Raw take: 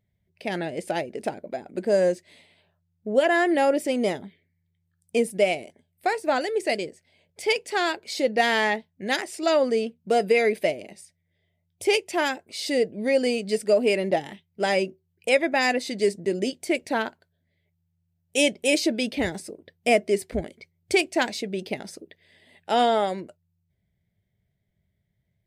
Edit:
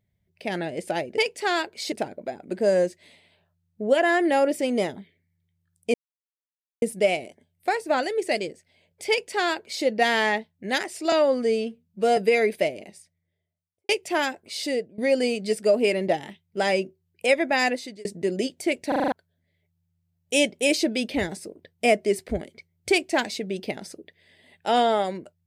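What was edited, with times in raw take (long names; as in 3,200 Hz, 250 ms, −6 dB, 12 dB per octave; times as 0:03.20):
0:05.20: splice in silence 0.88 s
0:07.48–0:08.22: duplicate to 0:01.18
0:09.50–0:10.20: time-stretch 1.5×
0:10.83–0:11.92: fade out and dull
0:12.64–0:13.01: fade out, to −19.5 dB
0:15.70–0:16.08: fade out
0:16.91: stutter in place 0.04 s, 6 plays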